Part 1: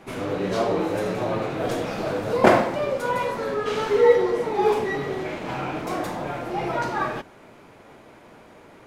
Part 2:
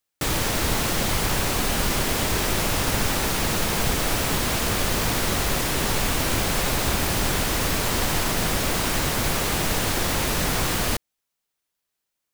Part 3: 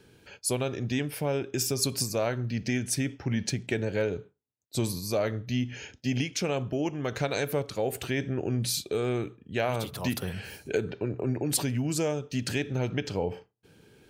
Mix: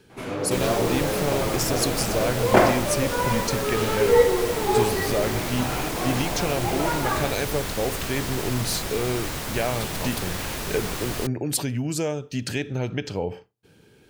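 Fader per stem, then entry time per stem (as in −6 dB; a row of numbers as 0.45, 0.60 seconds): −1.0, −7.0, +2.0 decibels; 0.10, 0.30, 0.00 seconds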